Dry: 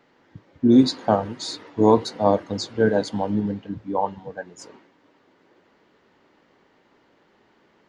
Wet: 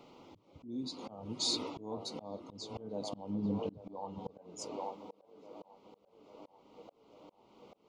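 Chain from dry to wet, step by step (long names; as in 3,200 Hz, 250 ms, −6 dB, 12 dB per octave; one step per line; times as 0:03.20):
dynamic equaliser 200 Hz, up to +3 dB, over −31 dBFS, Q 0.8
in parallel at −1 dB: brickwall limiter −14.5 dBFS, peak gain reduction 12.5 dB
on the sum: downward compressor 10 to 1, threshold −25 dBFS, peak gain reduction 20 dB
Butterworth band-reject 1,700 Hz, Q 1.6
on a send: delay with a band-pass on its return 837 ms, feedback 62%, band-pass 810 Hz, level −9 dB
on the sum: volume swells 482 ms
level −1.5 dB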